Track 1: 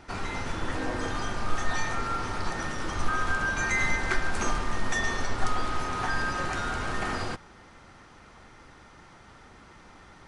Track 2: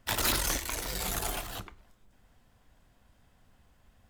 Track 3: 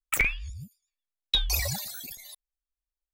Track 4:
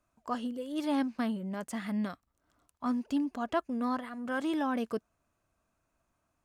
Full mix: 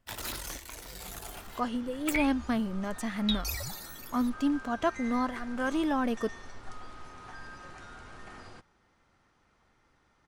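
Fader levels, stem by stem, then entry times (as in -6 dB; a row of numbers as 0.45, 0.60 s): -17.0, -9.5, -7.5, +2.5 dB; 1.25, 0.00, 1.95, 1.30 s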